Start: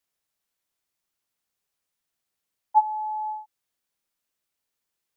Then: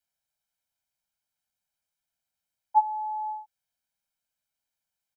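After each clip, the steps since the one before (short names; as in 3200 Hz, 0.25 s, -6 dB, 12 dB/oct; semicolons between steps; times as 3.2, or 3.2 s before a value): comb 1.3 ms, depth 78%; gain -6.5 dB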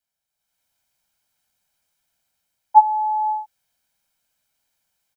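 AGC gain up to 11.5 dB; gain +1 dB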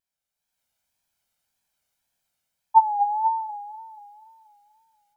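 echo with dull and thin repeats by turns 0.241 s, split 860 Hz, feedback 53%, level -5.5 dB; wow and flutter 83 cents; gain -4 dB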